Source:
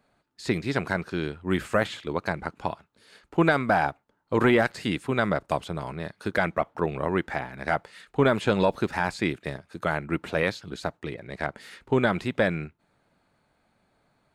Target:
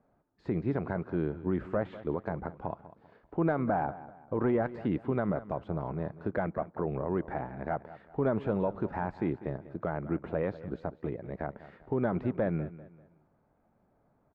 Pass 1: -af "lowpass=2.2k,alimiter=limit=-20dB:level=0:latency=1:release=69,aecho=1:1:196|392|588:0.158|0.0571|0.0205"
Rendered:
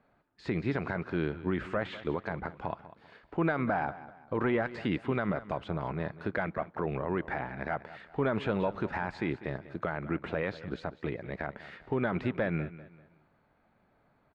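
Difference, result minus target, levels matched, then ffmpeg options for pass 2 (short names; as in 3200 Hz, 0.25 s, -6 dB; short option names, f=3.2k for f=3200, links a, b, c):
2000 Hz band +7.5 dB
-af "lowpass=900,alimiter=limit=-20dB:level=0:latency=1:release=69,aecho=1:1:196|392|588:0.158|0.0571|0.0205"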